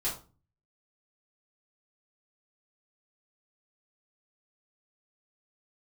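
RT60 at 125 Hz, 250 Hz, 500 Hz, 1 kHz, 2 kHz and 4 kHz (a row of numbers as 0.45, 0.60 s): 0.70, 0.55, 0.35, 0.35, 0.25, 0.25 s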